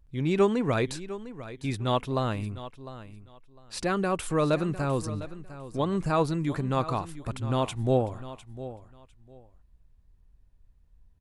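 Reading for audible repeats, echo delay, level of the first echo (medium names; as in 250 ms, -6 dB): 2, 703 ms, -14.5 dB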